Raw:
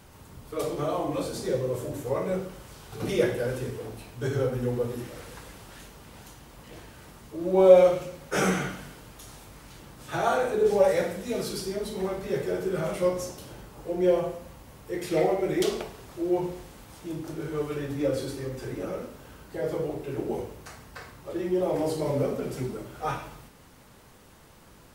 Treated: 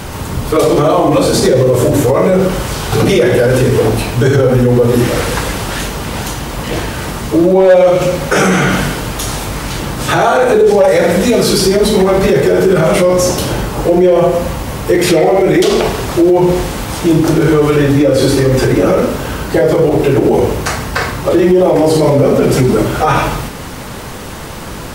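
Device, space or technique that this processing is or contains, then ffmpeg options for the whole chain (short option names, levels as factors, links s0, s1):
loud club master: -af "highshelf=f=10000:g=-4.5,acompressor=threshold=0.0224:ratio=1.5,asoftclip=type=hard:threshold=0.112,alimiter=level_in=28.2:limit=0.891:release=50:level=0:latency=1,volume=0.891"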